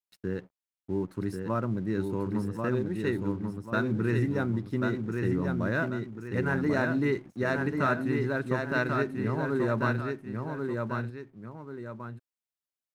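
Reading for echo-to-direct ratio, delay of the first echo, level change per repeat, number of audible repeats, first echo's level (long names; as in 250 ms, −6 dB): −3.5 dB, 1,089 ms, −8.0 dB, 2, −4.0 dB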